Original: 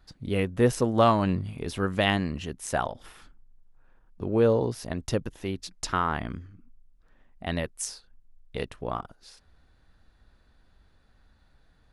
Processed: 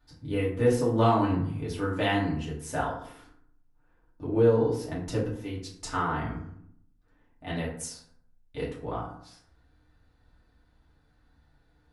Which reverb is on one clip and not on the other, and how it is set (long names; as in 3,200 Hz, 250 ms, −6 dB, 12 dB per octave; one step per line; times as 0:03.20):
feedback delay network reverb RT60 0.66 s, low-frequency decay 1.2×, high-frequency decay 0.5×, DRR −7 dB
level −10 dB